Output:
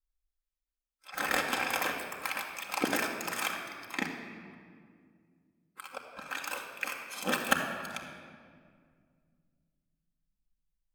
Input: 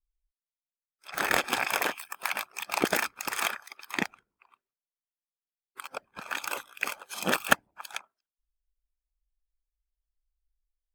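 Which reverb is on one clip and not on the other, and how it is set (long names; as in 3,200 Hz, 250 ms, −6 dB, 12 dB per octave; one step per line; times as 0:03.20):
rectangular room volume 3,800 cubic metres, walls mixed, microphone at 2.1 metres
level −5.5 dB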